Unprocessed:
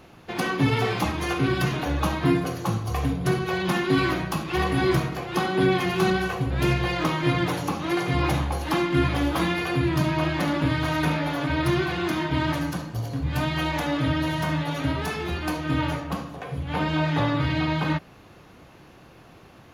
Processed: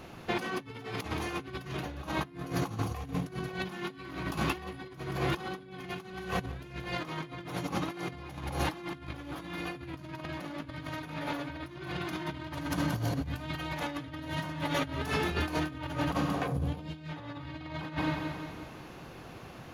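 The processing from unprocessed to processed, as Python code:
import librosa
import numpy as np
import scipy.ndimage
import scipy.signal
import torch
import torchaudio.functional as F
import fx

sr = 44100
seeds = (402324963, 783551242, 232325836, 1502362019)

y = fx.echo_feedback(x, sr, ms=177, feedback_pct=54, wet_db=-9.5)
y = fx.over_compress(y, sr, threshold_db=-30.0, ratio=-0.5)
y = fx.peak_eq(y, sr, hz=fx.line((16.46, 3000.0), (17.08, 840.0)), db=-12.5, octaves=2.3, at=(16.46, 17.08), fade=0.02)
y = y * librosa.db_to_amplitude(-4.5)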